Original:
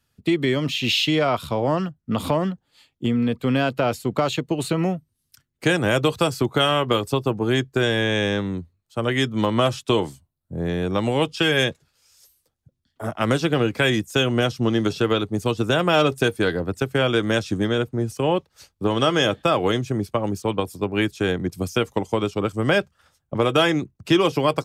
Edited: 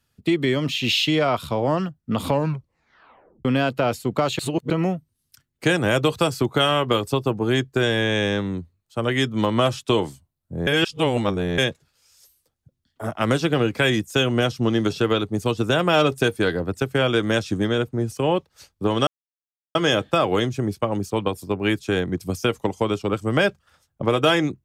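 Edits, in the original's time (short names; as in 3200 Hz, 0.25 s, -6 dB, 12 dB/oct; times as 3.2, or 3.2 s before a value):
2.27 tape stop 1.18 s
4.39–4.7 reverse
10.67–11.58 reverse
19.07 insert silence 0.68 s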